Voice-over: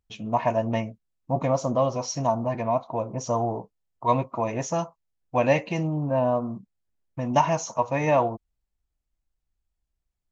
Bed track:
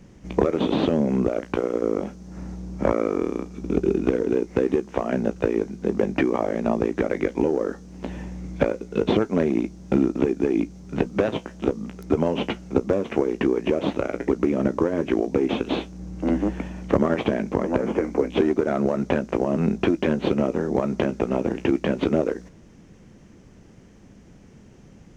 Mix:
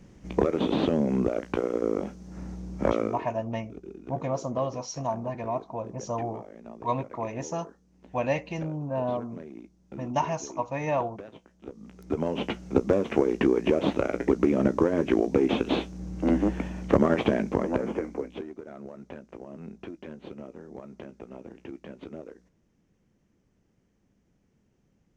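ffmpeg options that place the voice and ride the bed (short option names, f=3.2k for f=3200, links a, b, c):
-filter_complex "[0:a]adelay=2800,volume=-6dB[a];[1:a]volume=17dB,afade=t=out:st=2.98:d=0.27:silence=0.125893,afade=t=in:st=11.64:d=1.25:silence=0.0944061,afade=t=out:st=17.35:d=1.11:silence=0.112202[b];[a][b]amix=inputs=2:normalize=0"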